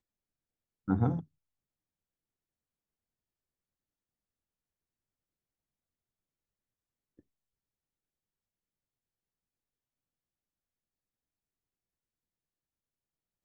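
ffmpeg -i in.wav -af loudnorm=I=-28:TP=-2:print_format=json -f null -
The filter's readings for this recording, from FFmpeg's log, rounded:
"input_i" : "-32.4",
"input_tp" : "-14.3",
"input_lra" : "2.2",
"input_thresh" : "-44.4",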